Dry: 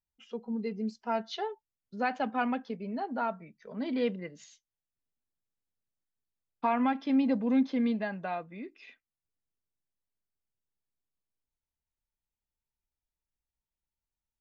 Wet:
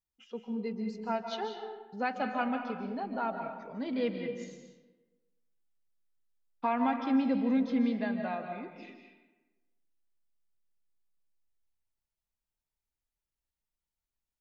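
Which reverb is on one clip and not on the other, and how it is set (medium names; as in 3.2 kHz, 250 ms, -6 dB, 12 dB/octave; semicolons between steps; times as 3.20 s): algorithmic reverb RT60 1.2 s, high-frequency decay 0.6×, pre-delay 110 ms, DRR 5 dB; trim -2 dB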